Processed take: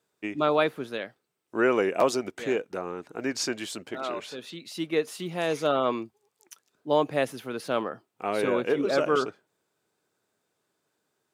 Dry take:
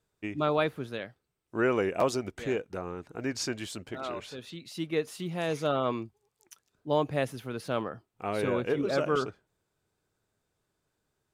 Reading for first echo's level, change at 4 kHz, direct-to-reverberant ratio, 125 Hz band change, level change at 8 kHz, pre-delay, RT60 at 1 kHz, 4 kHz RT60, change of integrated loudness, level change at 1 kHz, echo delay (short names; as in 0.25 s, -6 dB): none, +4.0 dB, none, -4.0 dB, +4.0 dB, none, none, none, +3.5 dB, +4.0 dB, none